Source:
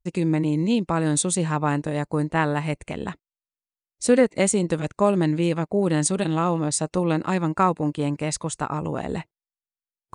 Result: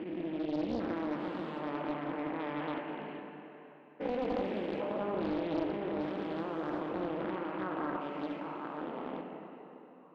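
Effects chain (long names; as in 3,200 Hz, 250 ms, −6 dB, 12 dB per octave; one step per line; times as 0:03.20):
spectrum averaged block by block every 400 ms
elliptic band-pass filter 240–2,900 Hz, stop band 60 dB
dense smooth reverb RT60 3.5 s, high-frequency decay 0.85×, DRR 1 dB
highs frequency-modulated by the lows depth 0.62 ms
level −9 dB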